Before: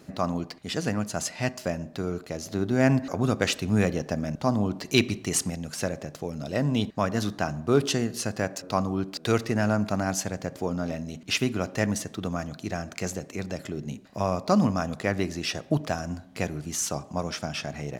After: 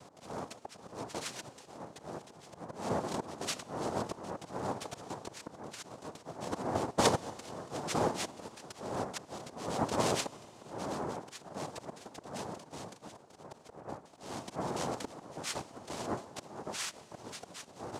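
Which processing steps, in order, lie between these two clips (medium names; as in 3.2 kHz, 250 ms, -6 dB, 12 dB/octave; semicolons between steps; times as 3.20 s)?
Bessel low-pass 4.5 kHz; band-stop 2 kHz, Q 9.8; peak limiter -17 dBFS, peak gain reduction 9 dB; slow attack 561 ms; 6.25–8.48 s: small resonant body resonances 520/1400/2000 Hz, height 14 dB; noise-vocoded speech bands 2; Schroeder reverb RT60 3.8 s, combs from 26 ms, DRR 20 dB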